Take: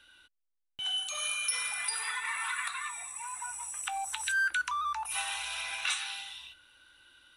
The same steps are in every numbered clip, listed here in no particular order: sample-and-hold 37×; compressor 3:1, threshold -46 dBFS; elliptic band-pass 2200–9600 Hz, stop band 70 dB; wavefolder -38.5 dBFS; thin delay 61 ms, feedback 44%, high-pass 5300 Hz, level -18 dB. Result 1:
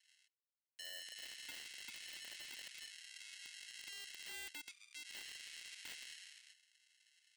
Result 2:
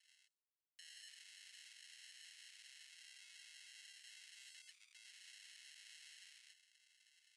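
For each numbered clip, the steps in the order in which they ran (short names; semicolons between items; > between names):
thin delay > sample-and-hold > elliptic band-pass > wavefolder > compressor; sample-and-hold > thin delay > wavefolder > compressor > elliptic band-pass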